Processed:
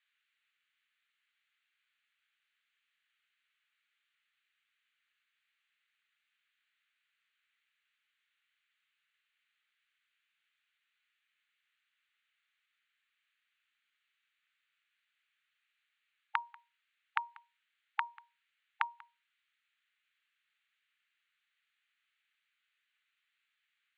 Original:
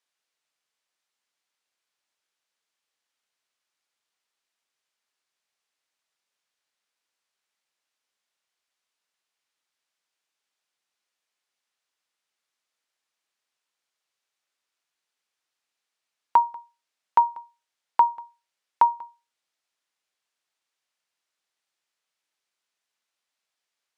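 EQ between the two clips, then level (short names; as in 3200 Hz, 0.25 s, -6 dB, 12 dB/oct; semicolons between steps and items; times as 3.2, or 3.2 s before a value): brick-wall FIR high-pass 830 Hz; air absorption 150 m; fixed phaser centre 2300 Hz, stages 4; +9.5 dB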